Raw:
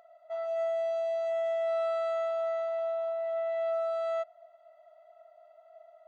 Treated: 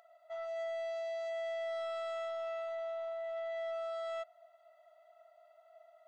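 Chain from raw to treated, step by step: HPF 1500 Hz 6 dB/oct; soft clip -36.5 dBFS, distortion -18 dB; gain +2 dB

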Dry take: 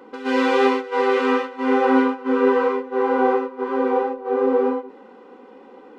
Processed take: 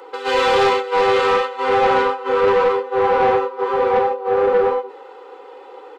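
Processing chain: Bessel high-pass 590 Hz, order 8; comb 2.3 ms, depth 58%; soft clip -18 dBFS, distortion -13 dB; gain +8 dB

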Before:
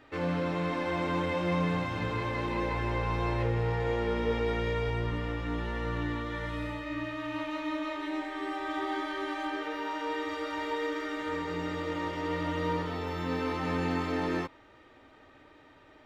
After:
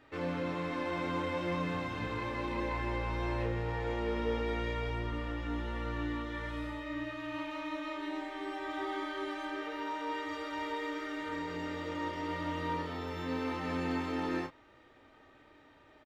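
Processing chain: doubler 31 ms -6.5 dB; gain -4.5 dB

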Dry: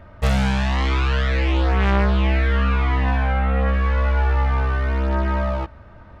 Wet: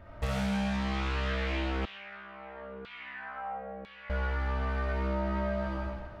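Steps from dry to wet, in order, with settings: digital reverb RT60 1.2 s, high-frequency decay 1×, pre-delay 15 ms, DRR -4.5 dB; compressor, threshold -20 dBFS, peak gain reduction 11.5 dB; 1.85–4.1 LFO band-pass saw down 1 Hz 400–3700 Hz; gain -8 dB

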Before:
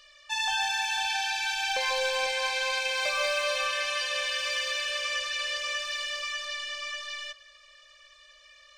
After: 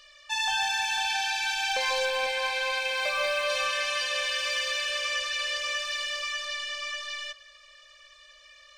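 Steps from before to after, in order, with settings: 2.05–3.5 bell 6500 Hz -6.5 dB 1.1 oct; in parallel at -9 dB: soft clip -26.5 dBFS, distortion -14 dB; on the sum: gain -1 dB

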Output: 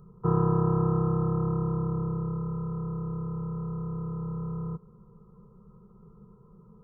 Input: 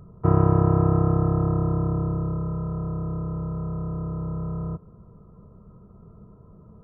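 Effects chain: fixed phaser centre 430 Hz, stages 8; gain -2.5 dB

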